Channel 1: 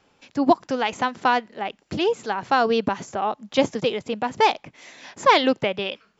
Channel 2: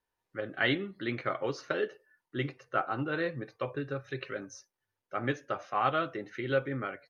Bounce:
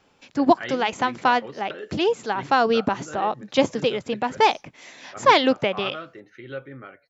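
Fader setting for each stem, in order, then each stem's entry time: +0.5, -5.5 dB; 0.00, 0.00 s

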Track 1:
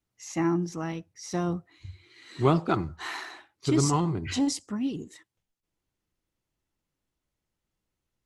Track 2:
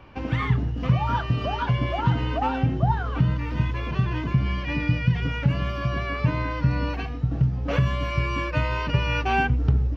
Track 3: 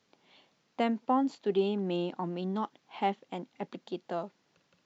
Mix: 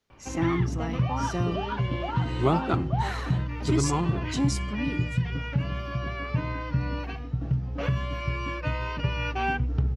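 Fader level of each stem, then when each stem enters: -1.5, -5.0, -8.0 dB; 0.00, 0.10, 0.00 s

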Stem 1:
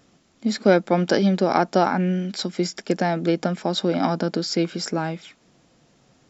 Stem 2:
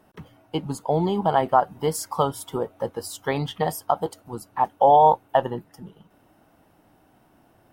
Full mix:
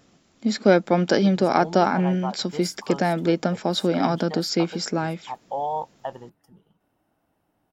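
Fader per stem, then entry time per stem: 0.0, -12.5 dB; 0.00, 0.70 s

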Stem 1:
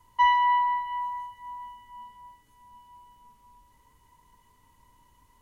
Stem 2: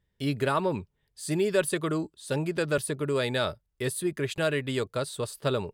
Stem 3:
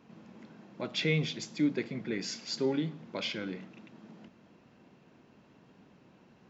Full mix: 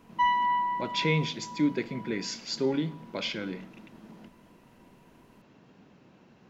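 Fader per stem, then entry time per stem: -4.0 dB, off, +2.5 dB; 0.00 s, off, 0.00 s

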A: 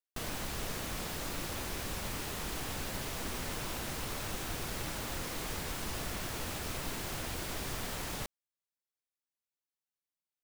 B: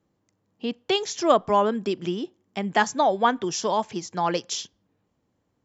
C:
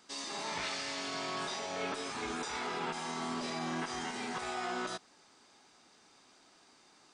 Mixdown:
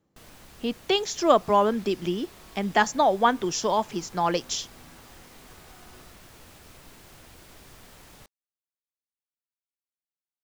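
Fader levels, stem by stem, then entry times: -11.5, 0.0, -18.5 dB; 0.00, 0.00, 1.15 s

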